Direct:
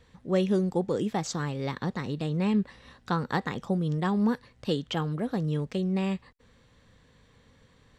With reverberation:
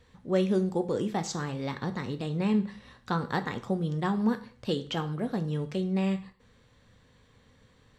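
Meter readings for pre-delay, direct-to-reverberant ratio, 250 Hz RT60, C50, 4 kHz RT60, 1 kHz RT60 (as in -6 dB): 4 ms, 8.0 dB, 0.45 s, 14.5 dB, 0.40 s, 0.40 s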